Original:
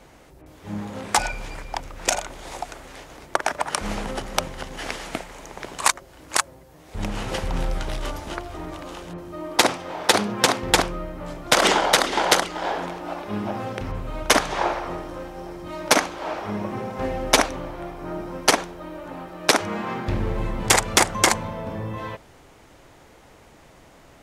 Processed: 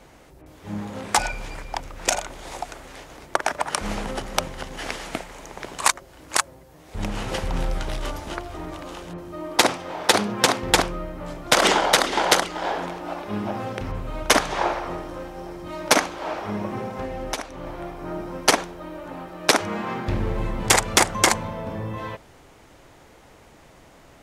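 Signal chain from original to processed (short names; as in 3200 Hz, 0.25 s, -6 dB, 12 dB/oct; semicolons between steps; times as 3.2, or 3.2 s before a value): 16.87–17.67 compressor 6:1, threshold -27 dBFS, peak gain reduction 15.5 dB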